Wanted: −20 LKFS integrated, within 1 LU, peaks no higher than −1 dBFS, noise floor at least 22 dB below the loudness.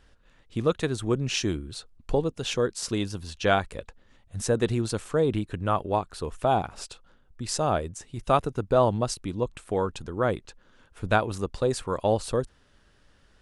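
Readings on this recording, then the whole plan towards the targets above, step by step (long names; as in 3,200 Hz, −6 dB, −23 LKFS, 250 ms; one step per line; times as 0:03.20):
integrated loudness −27.5 LKFS; sample peak −6.5 dBFS; target loudness −20.0 LKFS
→ level +7.5 dB
brickwall limiter −1 dBFS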